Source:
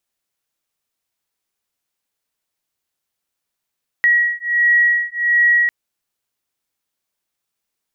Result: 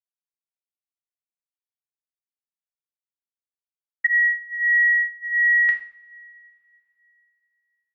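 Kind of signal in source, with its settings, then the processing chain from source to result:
two tones that beat 1,910 Hz, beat 1.4 Hz, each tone −15.5 dBFS 1.65 s
noise gate −18 dBFS, range −44 dB
high-frequency loss of the air 150 metres
coupled-rooms reverb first 0.46 s, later 3.2 s, from −27 dB, DRR 2 dB

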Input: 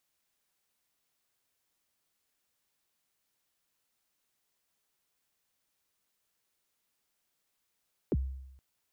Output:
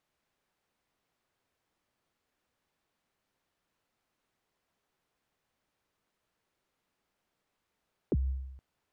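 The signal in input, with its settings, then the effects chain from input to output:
synth kick length 0.47 s, from 490 Hz, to 66 Hz, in 39 ms, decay 0.88 s, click off, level −23.5 dB
low-pass filter 1,300 Hz 6 dB per octave
in parallel at −2 dB: compressor whose output falls as the input rises −38 dBFS, ratio −1

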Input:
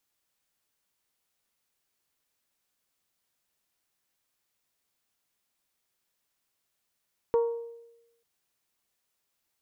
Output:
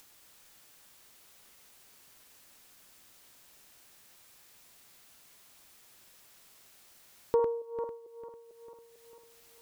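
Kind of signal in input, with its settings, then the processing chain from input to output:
struck glass bell, lowest mode 466 Hz, decay 0.96 s, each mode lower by 11 dB, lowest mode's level −19 dB
feedback delay that plays each chunk backwards 224 ms, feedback 52%, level −5 dB
upward compression, threshold −42 dBFS

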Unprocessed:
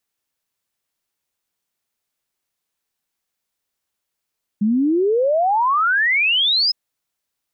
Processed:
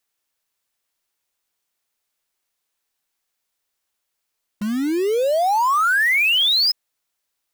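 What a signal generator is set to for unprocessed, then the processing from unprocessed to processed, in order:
exponential sine sweep 200 Hz → 5,200 Hz 2.11 s −14 dBFS
in parallel at −10 dB: wrap-around overflow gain 21 dB
on the sum: parametric band 140 Hz −7 dB 2.4 octaves

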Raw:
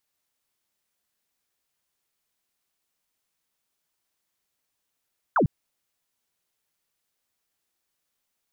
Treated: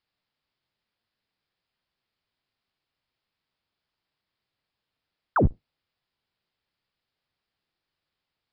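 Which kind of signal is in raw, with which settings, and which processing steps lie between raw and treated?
single falling chirp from 1,600 Hz, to 110 Hz, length 0.10 s sine, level −17 dB
sub-octave generator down 1 octave, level +2 dB
downsampling to 11,025 Hz

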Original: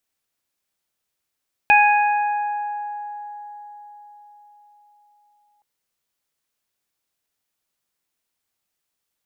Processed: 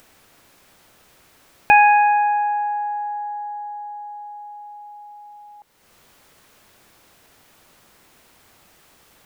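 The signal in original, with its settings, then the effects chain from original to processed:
harmonic partials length 3.92 s, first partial 830 Hz, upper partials −5.5/0 dB, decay 4.75 s, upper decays 2.59/1.41 s, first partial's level −12 dB
high-shelf EQ 2,700 Hz −11.5 dB
in parallel at −2.5 dB: upward compression, threshold −24 dBFS

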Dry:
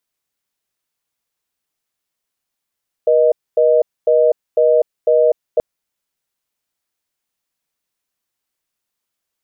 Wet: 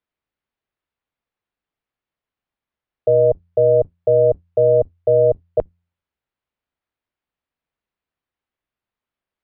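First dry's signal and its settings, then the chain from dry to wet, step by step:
call progress tone reorder tone, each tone −12 dBFS 2.53 s
sub-octave generator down 2 octaves, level −3 dB
high-frequency loss of the air 370 metres
hum removal 86.6 Hz, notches 2

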